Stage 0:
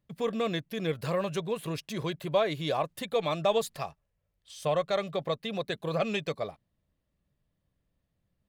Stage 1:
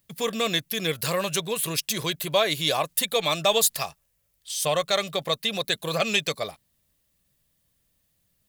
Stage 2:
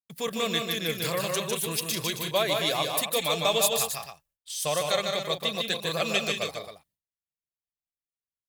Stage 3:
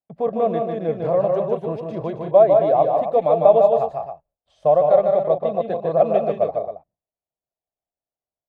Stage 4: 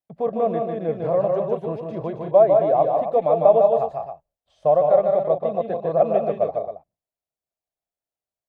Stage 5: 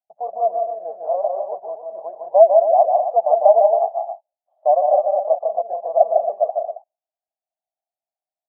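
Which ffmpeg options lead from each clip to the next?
-af "crystalizer=i=7.5:c=0,volume=1dB"
-af "agate=range=-33dB:threshold=-50dB:ratio=3:detection=peak,aecho=1:1:151.6|186.6|271.1:0.631|0.316|0.316,volume=-4dB"
-af "lowpass=f=680:t=q:w=4.1,volume=5dB"
-filter_complex "[0:a]acrossover=split=2700[a][b];[b]acompressor=threshold=-57dB:ratio=4:attack=1:release=60[c];[a][c]amix=inputs=2:normalize=0,volume=-1.5dB"
-af "asuperpass=centerf=730:order=4:qfactor=3.2,volume=6dB"

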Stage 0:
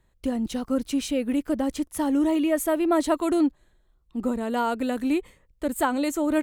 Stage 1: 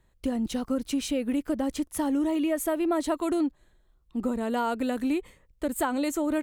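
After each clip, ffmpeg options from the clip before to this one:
-af "acompressor=threshold=-24dB:ratio=3"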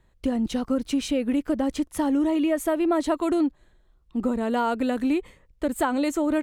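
-af "highshelf=f=8.5k:g=-10,volume=3.5dB"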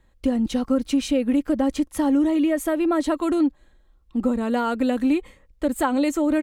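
-af "aecho=1:1:3.7:0.36,volume=1dB"

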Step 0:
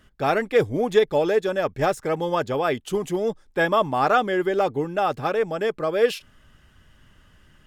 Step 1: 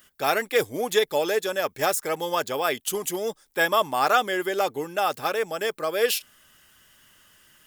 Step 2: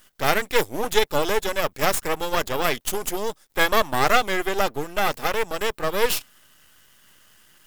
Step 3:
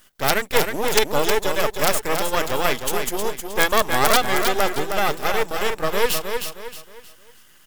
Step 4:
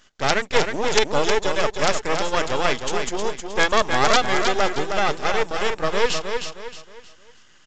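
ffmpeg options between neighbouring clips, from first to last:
-af "aemphasis=mode=production:type=riaa,volume=-1dB"
-af "aeval=exprs='max(val(0),0)':c=same,volume=5.5dB"
-af "aeval=exprs='(mod(1.58*val(0)+1,2)-1)/1.58':c=same,aecho=1:1:313|626|939|1252:0.501|0.175|0.0614|0.0215,volume=1dB"
-af "aresample=16000,aresample=44100"

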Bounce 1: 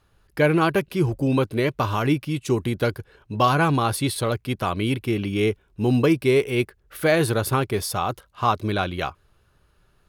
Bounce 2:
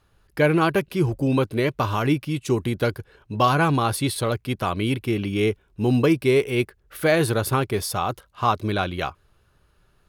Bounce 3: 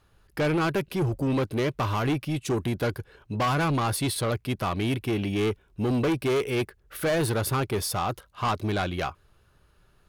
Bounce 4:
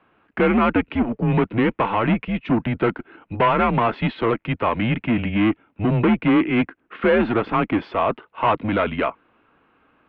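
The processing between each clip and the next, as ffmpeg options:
-af anull
-af "asoftclip=type=tanh:threshold=-21dB"
-af "highpass=f=240:t=q:w=0.5412,highpass=f=240:t=q:w=1.307,lowpass=f=2.9k:t=q:w=0.5176,lowpass=f=2.9k:t=q:w=0.7071,lowpass=f=2.9k:t=q:w=1.932,afreqshift=-110,volume=8.5dB"

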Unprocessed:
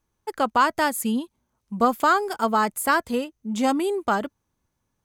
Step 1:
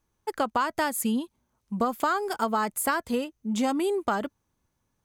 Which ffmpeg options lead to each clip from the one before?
-af "acompressor=threshold=-22dB:ratio=6"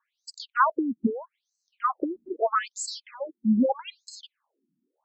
-af "afftfilt=real='re*between(b*sr/1024,230*pow(5800/230,0.5+0.5*sin(2*PI*0.79*pts/sr))/1.41,230*pow(5800/230,0.5+0.5*sin(2*PI*0.79*pts/sr))*1.41)':imag='im*between(b*sr/1024,230*pow(5800/230,0.5+0.5*sin(2*PI*0.79*pts/sr))/1.41,230*pow(5800/230,0.5+0.5*sin(2*PI*0.79*pts/sr))*1.41)':win_size=1024:overlap=0.75,volume=8dB"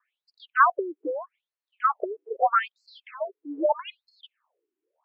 -af "highpass=f=360:t=q:w=0.5412,highpass=f=360:t=q:w=1.307,lowpass=f=3k:t=q:w=0.5176,lowpass=f=3k:t=q:w=0.7071,lowpass=f=3k:t=q:w=1.932,afreqshift=72,volume=3dB"

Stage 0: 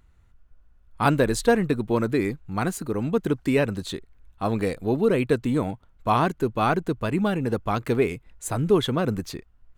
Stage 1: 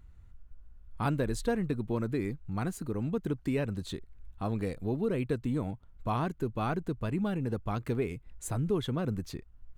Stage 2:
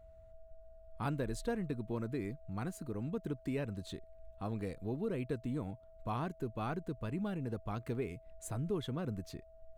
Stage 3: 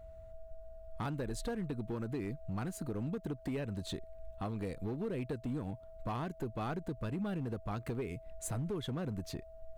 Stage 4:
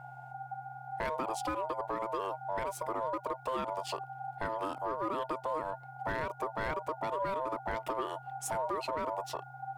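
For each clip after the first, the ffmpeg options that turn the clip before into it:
-af "lowshelf=f=210:g=9.5,acompressor=threshold=-38dB:ratio=1.5,volume=-4dB"
-af "aeval=exprs='val(0)+0.00282*sin(2*PI*650*n/s)':c=same,volume=-6.5dB"
-af "acompressor=threshold=-39dB:ratio=6,asoftclip=type=hard:threshold=-37.5dB,volume=6dB"
-af "aeval=exprs='val(0)*sin(2*PI*780*n/s)':c=same,volume=5.5dB"

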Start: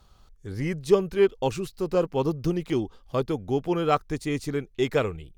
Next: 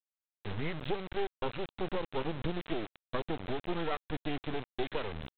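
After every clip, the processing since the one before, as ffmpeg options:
-af "acompressor=threshold=-28dB:ratio=16,aresample=8000,acrusher=bits=4:dc=4:mix=0:aa=0.000001,aresample=44100,volume=2dB"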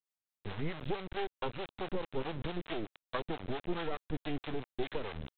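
-filter_complex "[0:a]acrossover=split=500[a][b];[a]aeval=exprs='val(0)*(1-0.7/2+0.7/2*cos(2*PI*4.6*n/s))':c=same[c];[b]aeval=exprs='val(0)*(1-0.7/2-0.7/2*cos(2*PI*4.6*n/s))':c=same[d];[c][d]amix=inputs=2:normalize=0,volume=1.5dB"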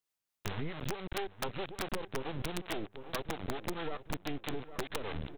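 -filter_complex "[0:a]asplit=2[a][b];[b]adelay=806,lowpass=f=2.7k:p=1,volume=-17.5dB,asplit=2[c][d];[d]adelay=806,lowpass=f=2.7k:p=1,volume=0.46,asplit=2[e][f];[f]adelay=806,lowpass=f=2.7k:p=1,volume=0.46,asplit=2[g][h];[h]adelay=806,lowpass=f=2.7k:p=1,volume=0.46[i];[a][c][e][g][i]amix=inputs=5:normalize=0,acompressor=threshold=-37dB:ratio=20,aeval=exprs='(mod(35.5*val(0)+1,2)-1)/35.5':c=same,volume=5.5dB"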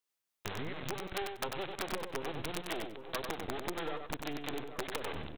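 -filter_complex "[0:a]bass=f=250:g=-6,treble=f=4k:g=0,asplit=2[a][b];[b]aecho=0:1:95|190|285:0.531|0.0903|0.0153[c];[a][c]amix=inputs=2:normalize=0"

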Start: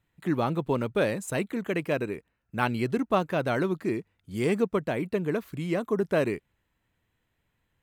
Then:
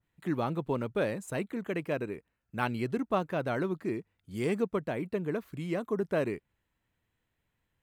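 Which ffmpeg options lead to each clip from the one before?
-af "adynamicequalizer=threshold=0.00562:dfrequency=2200:dqfactor=0.7:tfrequency=2200:tqfactor=0.7:attack=5:release=100:ratio=0.375:range=2:mode=cutabove:tftype=highshelf,volume=-4.5dB"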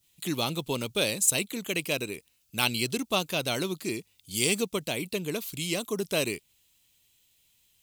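-af "aexciter=amount=14.1:drive=2.9:freq=2.6k"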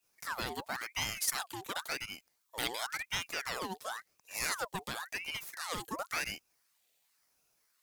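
-af "aeval=exprs='(tanh(5.01*val(0)+0.3)-tanh(0.3))/5.01':c=same,aeval=exprs='val(0)*sin(2*PI*1600*n/s+1600*0.65/0.94*sin(2*PI*0.94*n/s))':c=same,volume=-4.5dB"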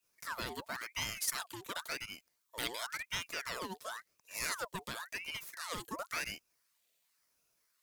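-af "asuperstop=centerf=790:order=4:qfactor=6.9,volume=-2.5dB"

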